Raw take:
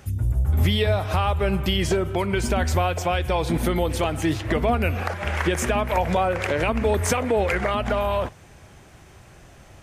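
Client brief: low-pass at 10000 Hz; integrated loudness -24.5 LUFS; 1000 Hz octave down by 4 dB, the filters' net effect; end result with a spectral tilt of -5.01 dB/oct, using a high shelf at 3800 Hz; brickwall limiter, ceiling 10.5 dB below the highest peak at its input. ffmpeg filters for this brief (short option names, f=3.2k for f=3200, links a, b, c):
-af "lowpass=10k,equalizer=f=1k:t=o:g=-6,highshelf=f=3.8k:g=5,volume=3.5dB,alimiter=limit=-15.5dB:level=0:latency=1"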